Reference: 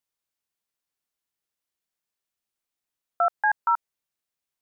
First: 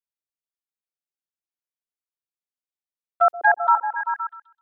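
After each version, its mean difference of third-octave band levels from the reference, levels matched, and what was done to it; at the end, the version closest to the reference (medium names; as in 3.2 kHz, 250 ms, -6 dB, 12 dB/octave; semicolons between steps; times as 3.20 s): 2.5 dB: gate -23 dBFS, range -21 dB; repeats whose band climbs or falls 129 ms, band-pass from 340 Hz, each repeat 0.7 oct, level -1 dB; trim +6 dB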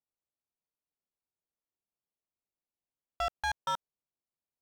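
15.0 dB: local Wiener filter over 25 samples; overload inside the chain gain 25.5 dB; trim -3 dB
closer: first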